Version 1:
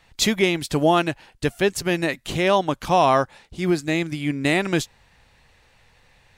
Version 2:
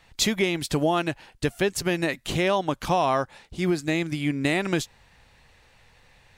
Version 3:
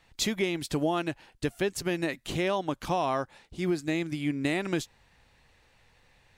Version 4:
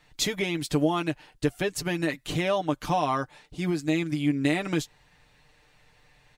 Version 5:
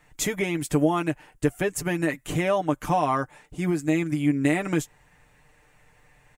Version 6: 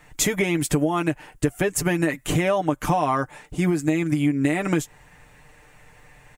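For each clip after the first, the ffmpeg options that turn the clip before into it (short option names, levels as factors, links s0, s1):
-af "acompressor=threshold=0.1:ratio=3"
-af "equalizer=f=310:w=1.9:g=3,volume=0.501"
-af "aecho=1:1:6.7:0.63,volume=1.12"
-af "firequalizer=gain_entry='entry(2000,0);entry(4100,-12);entry(7200,2)':delay=0.05:min_phase=1,volume=1.33"
-af "acompressor=threshold=0.0562:ratio=6,volume=2.37"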